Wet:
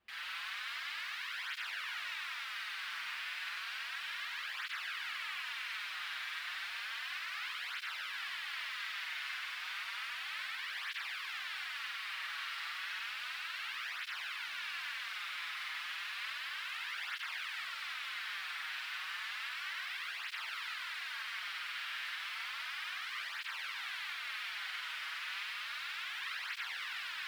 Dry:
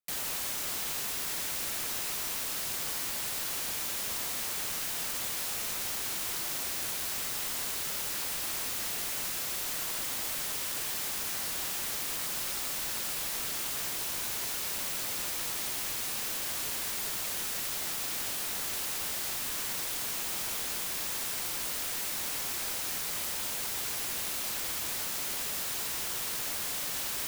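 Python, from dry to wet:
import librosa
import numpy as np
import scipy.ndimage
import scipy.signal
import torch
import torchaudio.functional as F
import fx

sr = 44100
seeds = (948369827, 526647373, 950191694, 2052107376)

p1 = scipy.signal.sosfilt(scipy.signal.butter(4, 1400.0, 'highpass', fs=sr, output='sos'), x)
p2 = fx.high_shelf(p1, sr, hz=12000.0, db=-10.0)
p3 = fx.quant_dither(p2, sr, seeds[0], bits=12, dither='triangular')
p4 = fx.air_absorb(p3, sr, metres=410.0)
p5 = p4 + fx.room_flutter(p4, sr, wall_m=8.3, rt60_s=1.4, dry=0)
p6 = fx.flanger_cancel(p5, sr, hz=0.32, depth_ms=7.2)
y = p6 * 10.0 ** (6.5 / 20.0)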